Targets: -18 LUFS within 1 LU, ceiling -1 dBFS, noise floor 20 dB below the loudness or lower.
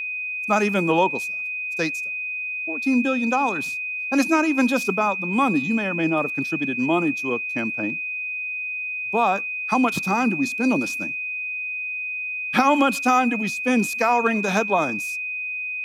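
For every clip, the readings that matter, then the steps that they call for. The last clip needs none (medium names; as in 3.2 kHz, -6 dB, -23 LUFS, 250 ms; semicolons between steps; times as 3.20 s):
steady tone 2.5 kHz; tone level -26 dBFS; loudness -22.0 LUFS; peak level -6.5 dBFS; loudness target -18.0 LUFS
-> band-stop 2.5 kHz, Q 30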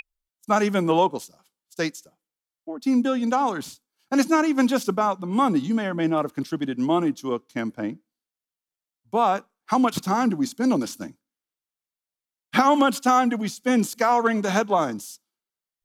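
steady tone not found; loudness -23.0 LUFS; peak level -7.0 dBFS; loudness target -18.0 LUFS
-> trim +5 dB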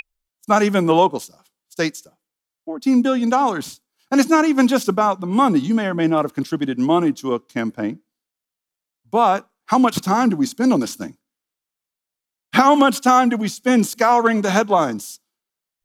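loudness -18.0 LUFS; peak level -2.0 dBFS; noise floor -86 dBFS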